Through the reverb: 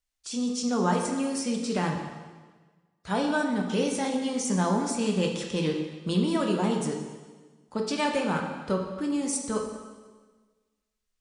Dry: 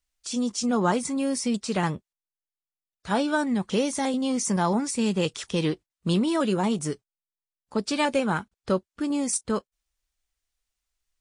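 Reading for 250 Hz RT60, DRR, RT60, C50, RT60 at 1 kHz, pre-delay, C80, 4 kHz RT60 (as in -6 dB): 1.4 s, 1.5 dB, 1.4 s, 4.5 dB, 1.4 s, 6 ms, 6.0 dB, 1.3 s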